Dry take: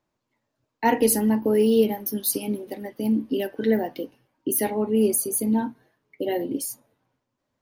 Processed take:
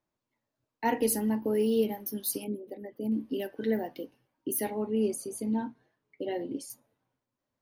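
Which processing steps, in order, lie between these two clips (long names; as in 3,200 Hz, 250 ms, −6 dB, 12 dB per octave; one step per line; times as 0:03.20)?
0:02.44–0:03.12: spectral envelope exaggerated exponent 1.5
0:04.87–0:06.70: Bessel low-pass filter 7,200 Hz, order 4
level −7.5 dB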